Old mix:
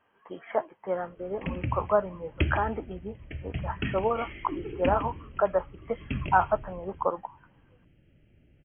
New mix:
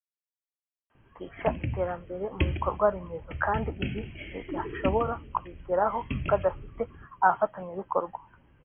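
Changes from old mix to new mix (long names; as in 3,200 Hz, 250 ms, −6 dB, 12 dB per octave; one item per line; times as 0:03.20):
speech: entry +0.90 s
background: add parametric band 1,100 Hz −11.5 dB 0.54 octaves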